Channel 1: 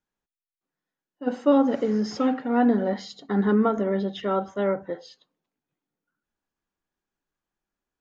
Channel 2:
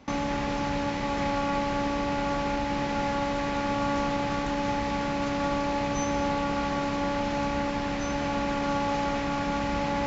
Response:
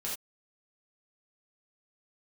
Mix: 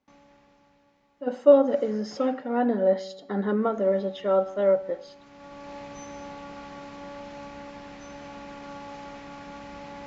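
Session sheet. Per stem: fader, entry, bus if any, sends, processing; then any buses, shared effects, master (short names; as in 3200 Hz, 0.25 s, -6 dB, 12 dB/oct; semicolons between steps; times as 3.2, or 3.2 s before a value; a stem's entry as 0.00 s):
+1.5 dB, 0.00 s, no send, bell 570 Hz +10.5 dB 0.35 oct
3.41 s -19 dB -> 3.83 s -7 dB, 0.00 s, no send, auto duck -14 dB, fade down 1.20 s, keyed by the first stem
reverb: off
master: low shelf 130 Hz -6 dB; resonator 190 Hz, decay 0.94 s, mix 50%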